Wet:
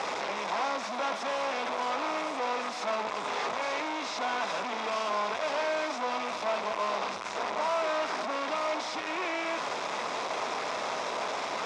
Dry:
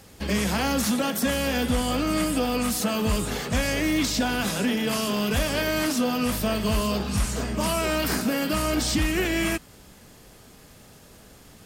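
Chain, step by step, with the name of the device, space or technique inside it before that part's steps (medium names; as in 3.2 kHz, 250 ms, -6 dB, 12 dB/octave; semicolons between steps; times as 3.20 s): home computer beeper (one-bit comparator; cabinet simulation 610–4600 Hz, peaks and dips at 650 Hz +4 dB, 1 kHz +6 dB, 1.7 kHz -6 dB, 3 kHz -9 dB, 4.4 kHz -9 dB); trim -1 dB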